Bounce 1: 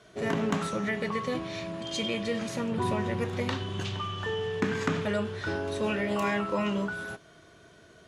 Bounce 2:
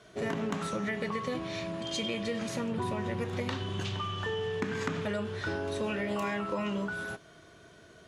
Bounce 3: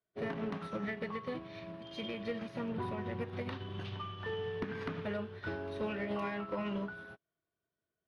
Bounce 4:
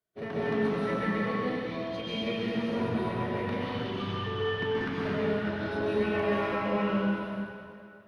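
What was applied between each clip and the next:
compressor, threshold -29 dBFS, peak gain reduction 7.5 dB
hard clip -27.5 dBFS, distortion -19 dB; running mean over 6 samples; upward expander 2.5:1, over -54 dBFS; gain -1.5 dB
plate-style reverb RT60 2.5 s, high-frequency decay 0.85×, pre-delay 0.115 s, DRR -8 dB

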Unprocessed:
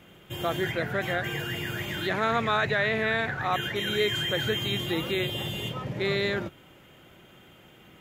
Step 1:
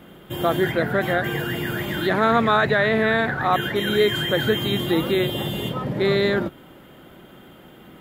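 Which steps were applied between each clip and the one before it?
fifteen-band EQ 100 Hz -6 dB, 250 Hz +4 dB, 2500 Hz -8 dB, 6300 Hz -10 dB; gain +8 dB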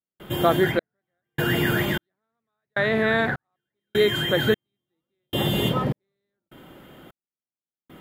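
vocal rider within 5 dB 0.5 s; step gate ".xxx...xxx..." 76 bpm -60 dB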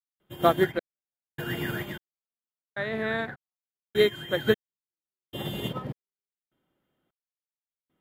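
upward expander 2.5:1, over -36 dBFS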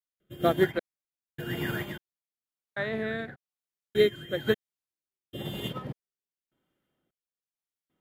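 rotary speaker horn 1 Hz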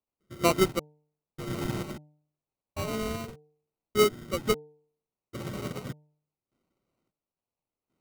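sample-rate reducer 1700 Hz, jitter 0%; de-hum 150.2 Hz, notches 6

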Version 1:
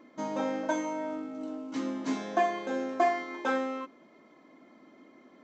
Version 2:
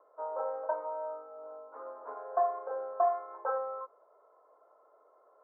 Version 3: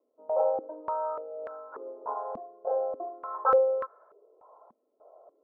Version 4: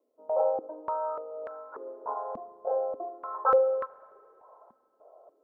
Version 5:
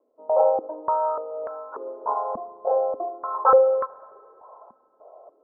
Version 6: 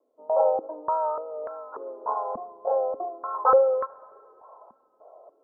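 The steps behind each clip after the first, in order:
Chebyshev band-pass 440–1400 Hz, order 4; gain -1 dB
stepped low-pass 3.4 Hz 230–1600 Hz; gain +2 dB
spring tank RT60 2.7 s, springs 33/41 ms, chirp 30 ms, DRR 19.5 dB
synth low-pass 1100 Hz, resonance Q 1.5; gain +5 dB
vibrato 3.4 Hz 37 cents; gain -2.5 dB

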